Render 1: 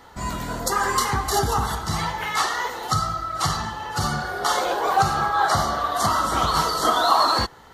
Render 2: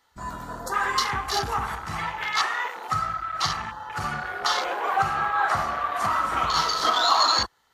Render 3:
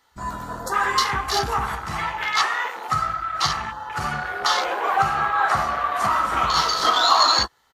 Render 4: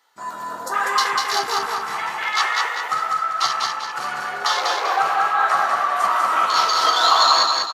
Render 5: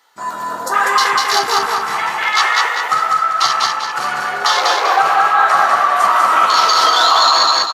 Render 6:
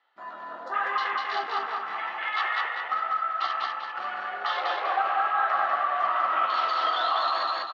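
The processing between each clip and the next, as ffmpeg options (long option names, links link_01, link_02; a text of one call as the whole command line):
ffmpeg -i in.wav -af "afwtdn=0.0316,tiltshelf=frequency=1100:gain=-7,volume=-2.5dB" out.wav
ffmpeg -i in.wav -filter_complex "[0:a]asplit=2[link_01][link_02];[link_02]adelay=15,volume=-11dB[link_03];[link_01][link_03]amix=inputs=2:normalize=0,volume=3dB" out.wav
ffmpeg -i in.wav -filter_complex "[0:a]highpass=410,asplit=2[link_01][link_02];[link_02]aecho=0:1:196|392|588|784|980:0.708|0.276|0.108|0.042|0.0164[link_03];[link_01][link_03]amix=inputs=2:normalize=0" out.wav
ffmpeg -i in.wav -af "alimiter=level_in=8dB:limit=-1dB:release=50:level=0:latency=1,volume=-1dB" out.wav
ffmpeg -i in.wav -af "highpass=390,equalizer=frequency=450:width_type=q:width=4:gain=-9,equalizer=frequency=960:width_type=q:width=4:gain=-9,equalizer=frequency=1500:width_type=q:width=4:gain=-5,equalizer=frequency=2300:width_type=q:width=4:gain=-6,lowpass=frequency=2900:width=0.5412,lowpass=frequency=2900:width=1.3066,volume=-8.5dB" out.wav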